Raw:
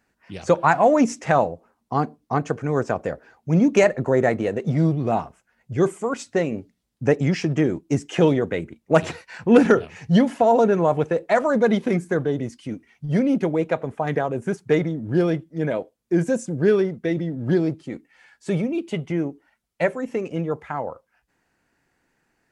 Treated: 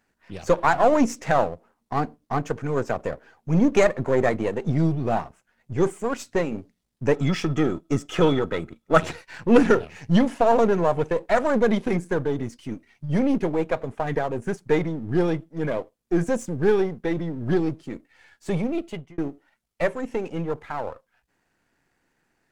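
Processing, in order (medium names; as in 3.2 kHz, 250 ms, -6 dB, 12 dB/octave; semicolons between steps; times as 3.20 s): partial rectifier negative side -7 dB; 7.14–9.03 s: small resonant body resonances 1.3/3.4 kHz, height 17 dB, ringing for 45 ms; 18.76–19.18 s: fade out; trim +1 dB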